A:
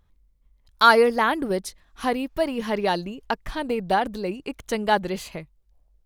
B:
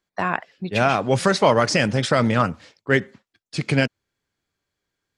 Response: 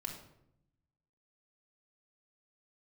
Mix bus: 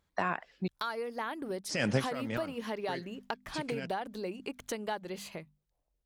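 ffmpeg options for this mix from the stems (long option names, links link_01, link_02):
-filter_complex "[0:a]bandreject=frequency=50:width_type=h:width=6,bandreject=frequency=100:width_type=h:width=6,bandreject=frequency=150:width_type=h:width=6,bandreject=frequency=200:width_type=h:width=6,bandreject=frequency=250:width_type=h:width=6,acompressor=threshold=-31dB:ratio=4,volume=-7dB,asplit=2[link_01][link_02];[1:a]alimiter=limit=-16dB:level=0:latency=1:release=354,volume=-2.5dB,asplit=3[link_03][link_04][link_05];[link_03]atrim=end=0.68,asetpts=PTS-STARTPTS,afade=type=out:start_time=0.676:duration=0.004:curve=hsin[link_06];[link_04]atrim=start=0.68:end=1.69,asetpts=PTS-STARTPTS,volume=0[link_07];[link_05]atrim=start=1.69,asetpts=PTS-STARTPTS,afade=type=in:duration=0.004:curve=hsin[link_08];[link_06][link_07][link_08]concat=n=3:v=0:a=1[link_09];[link_02]apad=whole_len=228170[link_10];[link_09][link_10]sidechaincompress=threshold=-52dB:ratio=8:attack=16:release=187[link_11];[link_01][link_11]amix=inputs=2:normalize=0,highpass=frequency=140:poles=1,dynaudnorm=framelen=290:gausssize=7:maxgain=4dB"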